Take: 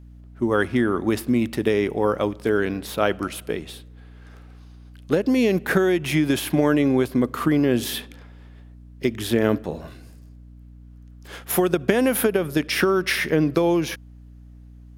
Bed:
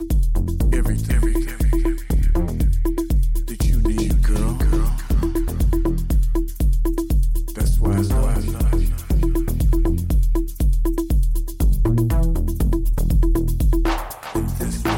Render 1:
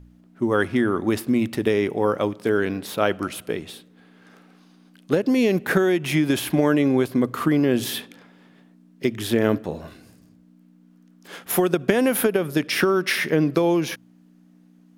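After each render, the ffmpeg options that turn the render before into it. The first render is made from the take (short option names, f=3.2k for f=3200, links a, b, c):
-af "bandreject=f=60:t=h:w=4,bandreject=f=120:t=h:w=4"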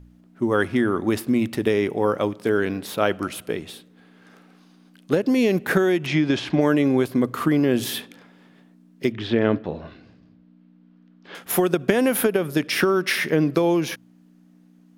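-filter_complex "[0:a]asettb=1/sr,asplit=3[a][b][c];[a]atrim=end=6.064[d];[b]atrim=start=6.06:end=6.61,asetpts=PTS-STARTPTS,afade=t=in:d=0.004:c=qsin,afade=t=out:st=0.546:d=0.004:c=qsin,lowpass=f=5.8k:w=0.5412,lowpass=f=5.8k:w=1.3066[e];[c]atrim=start=6.606[f];[d][e]acrossfade=d=0.004:c1=hsin:c2=qsin[g];[g][f]acrossfade=d=0.004:c1=qsin:c2=hsin,asettb=1/sr,asplit=3[h][i][j];[h]atrim=end=9.124[k];[i]atrim=start=9.12:end=11.35,asetpts=PTS-STARTPTS,afade=t=in:d=0.004:c=qsin,afade=t=out:st=2.226:d=0.004:c=qsin,lowpass=f=4.2k:w=0.5412,lowpass=f=4.2k:w=1.3066[l];[j]atrim=start=11.346[m];[k][l]acrossfade=d=0.004:c1=hsin:c2=qsin[n];[n][m]acrossfade=d=0.004:c1=qsin:c2=hsin"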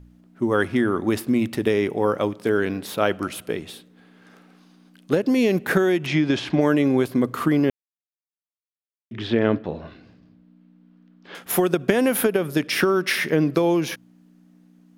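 -filter_complex "[0:a]asplit=3[a][b][c];[a]atrim=end=7.7,asetpts=PTS-STARTPTS,afade=t=out:st=7.696:d=0.004:c=hsin[d];[b]atrim=start=7.7:end=9.11,asetpts=PTS-STARTPTS,volume=0[e];[c]atrim=start=9.11,asetpts=PTS-STARTPTS,afade=t=in:d=0.004:c=hsin[f];[d][e][f]concat=n=3:v=0:a=1"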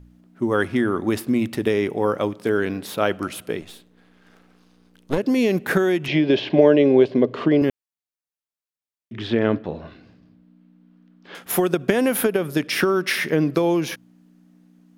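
-filter_complex "[0:a]asettb=1/sr,asplit=3[a][b][c];[a]atrim=end=3.614[d];[b]atrim=start=3.61:end=5.18,asetpts=PTS-STARTPTS,afade=t=in:d=0.004:c=qsin,afade=t=out:st=1.566:d=0.004:c=qsin,aeval=exprs='if(lt(val(0),0),0.251*val(0),val(0))':c=same[e];[c]atrim=start=5.176[f];[d][e]acrossfade=d=0.004:c1=hsin:c2=qsin[g];[g][f]acrossfade=d=0.004:c1=qsin:c2=hsin,asettb=1/sr,asplit=3[h][i][j];[h]atrim=end=6.084[k];[i]atrim=start=6.08:end=7.62,asetpts=PTS-STARTPTS,afade=t=in:d=0.004:c=qsin,afade=t=out:st=1.536:d=0.004:c=qsin,highpass=110,equalizer=f=410:t=q:w=4:g=9,equalizer=f=600:t=q:w=4:g=9,equalizer=f=1.3k:t=q:w=4:g=-9,equalizer=f=2.9k:t=q:w=4:g=5,lowpass=f=4.8k:w=0.5412,lowpass=f=4.8k:w=1.3066[l];[j]atrim=start=7.616[m];[k][l]acrossfade=d=0.004:c1=hsin:c2=qsin[n];[n][m]acrossfade=d=0.004:c1=qsin:c2=hsin"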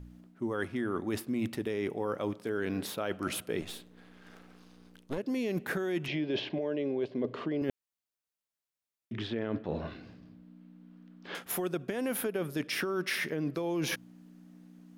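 -af "alimiter=limit=-13dB:level=0:latency=1:release=247,areverse,acompressor=threshold=-30dB:ratio=6,areverse"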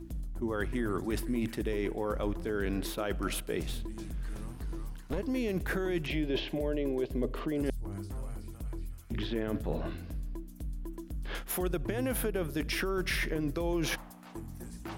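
-filter_complex "[1:a]volume=-21dB[a];[0:a][a]amix=inputs=2:normalize=0"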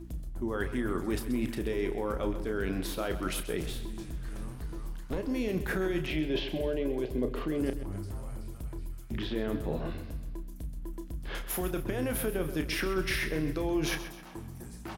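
-filter_complex "[0:a]asplit=2[a][b];[b]adelay=32,volume=-9dB[c];[a][c]amix=inputs=2:normalize=0,aecho=1:1:131|262|393|524|655:0.237|0.109|0.0502|0.0231|0.0106"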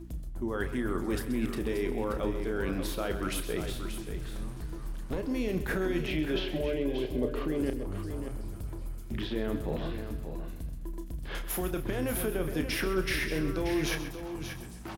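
-af "aecho=1:1:582:0.355"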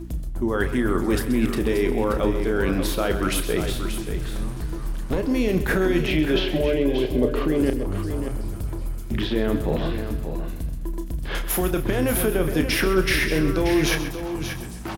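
-af "volume=9.5dB"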